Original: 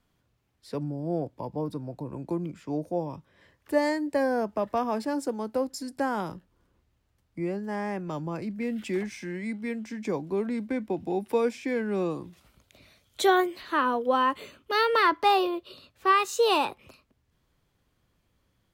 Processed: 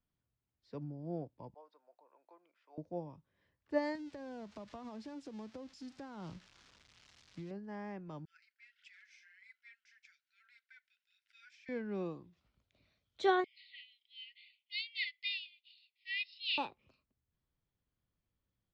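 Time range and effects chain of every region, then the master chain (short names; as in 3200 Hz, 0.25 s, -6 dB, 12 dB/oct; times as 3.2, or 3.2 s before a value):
1.54–2.78 HPF 600 Hz 24 dB/oct + air absorption 150 m
3.95–7.51 switching spikes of -22.5 dBFS + tone controls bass +7 dB, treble -4 dB + compressor 8:1, threshold -29 dBFS
8.25–11.69 brick-wall FIR high-pass 1300 Hz + phaser 1.7 Hz, delay 3.5 ms, feedback 43%
13.44–16.58 brick-wall FIR band-pass 1900–5400 Hz + bell 2800 Hz +6.5 dB 1.9 oct
whole clip: LPF 5600 Hz 24 dB/oct; tone controls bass +4 dB, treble 0 dB; upward expander 1.5:1, over -39 dBFS; gain -8 dB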